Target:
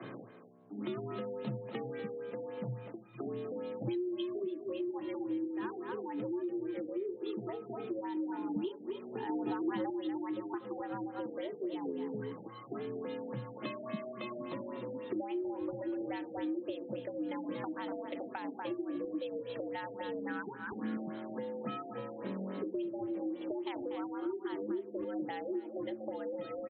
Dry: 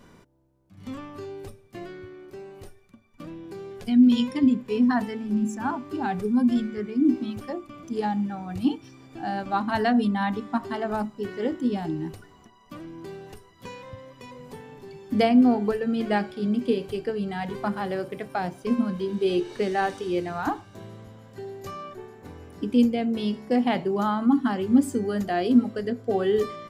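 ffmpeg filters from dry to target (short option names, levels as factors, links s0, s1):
-filter_complex "[0:a]afreqshift=110,asettb=1/sr,asplit=3[s0][s1][s2];[s0]atrim=end=20.144[s3];[s1]atrim=start=20.14:end=20.97,asetpts=PTS-STARTPTS,afade=t=in:d=0.004:c=qsin,afade=t=out:st=0.826:d=0.004:c=qsin,equalizer=f=250:t=o:w=0.67:g=6,equalizer=f=630:t=o:w=0.67:g=-6,equalizer=f=1600:t=o:w=0.67:g=11,equalizer=f=4000:t=o:w=0.67:g=-4[s4];[s2]atrim=start=20.966[s5];[s3][s4]acrossfade=d=0.004:c1=hsin:c2=qsin[s6];[s6][s5]acrossfade=d=0.004:c1=qsin:c2=hsin,asplit=2[s7][s8];[s8]adelay=240,highpass=300,lowpass=3400,asoftclip=type=hard:threshold=0.15,volume=0.316[s9];[s7][s9]amix=inputs=2:normalize=0,acompressor=threshold=0.02:ratio=6,asettb=1/sr,asplit=3[s10][s11][s12];[s10]atrim=end=9.294[s13];[s11]atrim=start=9.29:end=9.9,asetpts=PTS-STARTPTS,afade=t=in:d=0.004:c=qsin,afade=t=out:st=0.606:d=0.004:c=qsin,equalizer=f=380:w=0.6:g=8.5[s14];[s12]atrim=start=9.896[s15];[s13][s14]acrossfade=d=0.004:c1=hsin:c2=qsin[s16];[s16][s15]acrossfade=d=0.004:c1=qsin:c2=hsin,acrossover=split=240|3000[s17][s18][s19];[s18]acompressor=threshold=0.00355:ratio=4[s20];[s17][s20][s19]amix=inputs=3:normalize=0,afftfilt=real='re*lt(b*sr/1024,800*pow(4300/800,0.5+0.5*sin(2*PI*3.6*pts/sr)))':imag='im*lt(b*sr/1024,800*pow(4300/800,0.5+0.5*sin(2*PI*3.6*pts/sr)))':win_size=1024:overlap=0.75,volume=2.24"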